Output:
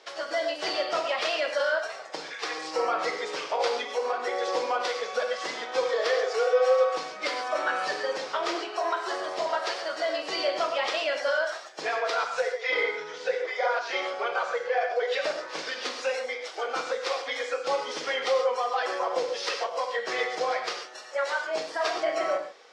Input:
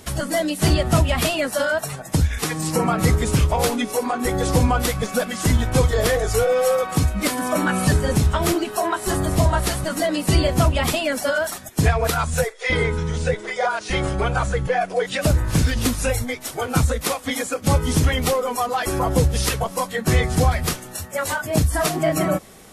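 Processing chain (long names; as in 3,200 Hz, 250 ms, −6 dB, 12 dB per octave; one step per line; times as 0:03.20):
elliptic band-pass filter 460–5,200 Hz, stop band 70 dB
reverb whose tail is shaped and stops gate 160 ms flat, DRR 3 dB
level −5.5 dB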